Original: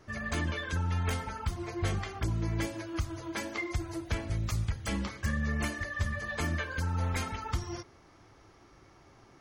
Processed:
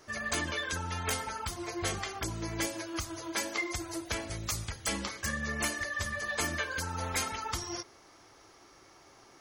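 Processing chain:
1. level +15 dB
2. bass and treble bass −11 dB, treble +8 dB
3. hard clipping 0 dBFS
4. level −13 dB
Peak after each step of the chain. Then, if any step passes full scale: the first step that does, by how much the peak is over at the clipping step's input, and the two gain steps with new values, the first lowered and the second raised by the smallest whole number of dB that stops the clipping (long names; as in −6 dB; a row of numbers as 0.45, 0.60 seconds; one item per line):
−3.5, −4.5, −4.5, −17.5 dBFS
no step passes full scale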